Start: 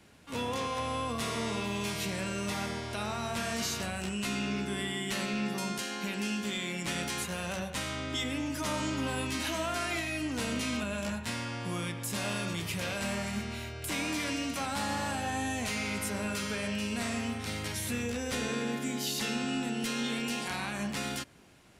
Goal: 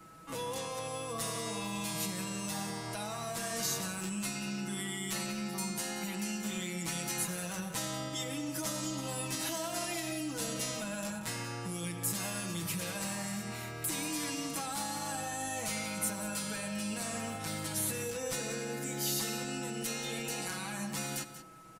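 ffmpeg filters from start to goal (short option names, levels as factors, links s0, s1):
-filter_complex "[0:a]aeval=exprs='val(0)+0.00112*sin(2*PI*1300*n/s)':c=same,aecho=1:1:6.1:0.9,acrossover=split=2400[s0][s1];[s0]alimiter=level_in=2.24:limit=0.0631:level=0:latency=1:release=164,volume=0.447[s2];[s1]aderivative[s3];[s2][s3]amix=inputs=2:normalize=0,aecho=1:1:184:0.237"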